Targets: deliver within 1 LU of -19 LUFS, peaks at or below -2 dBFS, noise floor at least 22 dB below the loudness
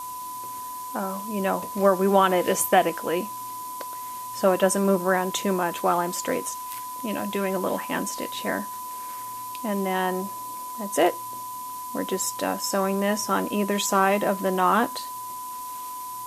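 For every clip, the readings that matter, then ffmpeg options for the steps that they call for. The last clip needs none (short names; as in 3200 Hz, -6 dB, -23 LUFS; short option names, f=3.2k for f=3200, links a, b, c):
steady tone 1000 Hz; tone level -33 dBFS; noise floor -35 dBFS; noise floor target -48 dBFS; loudness -25.5 LUFS; peak -5.5 dBFS; loudness target -19.0 LUFS
-> -af "bandreject=f=1k:w=30"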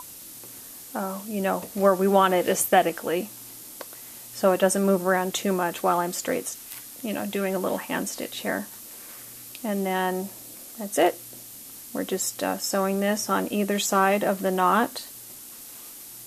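steady tone none; noise floor -43 dBFS; noise floor target -47 dBFS
-> -af "afftdn=nr=6:nf=-43"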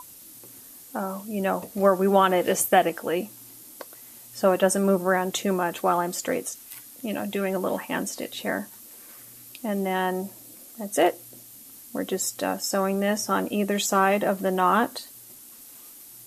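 noise floor -47 dBFS; loudness -25.0 LUFS; peak -5.5 dBFS; loudness target -19.0 LUFS
-> -af "volume=6dB,alimiter=limit=-2dB:level=0:latency=1"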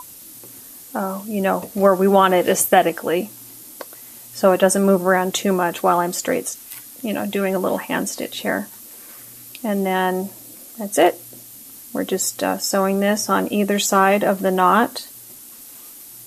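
loudness -19.0 LUFS; peak -2.0 dBFS; noise floor -41 dBFS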